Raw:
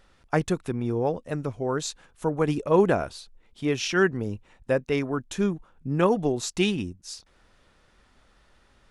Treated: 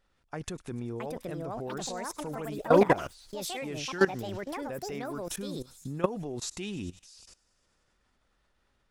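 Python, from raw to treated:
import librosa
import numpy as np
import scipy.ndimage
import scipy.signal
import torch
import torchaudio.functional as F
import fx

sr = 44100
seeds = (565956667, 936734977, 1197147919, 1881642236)

y = fx.echo_pitch(x, sr, ms=766, semitones=6, count=2, db_per_echo=-3.0)
y = fx.echo_wet_highpass(y, sr, ms=100, feedback_pct=71, hz=5200.0, wet_db=-12.5)
y = fx.level_steps(y, sr, step_db=18)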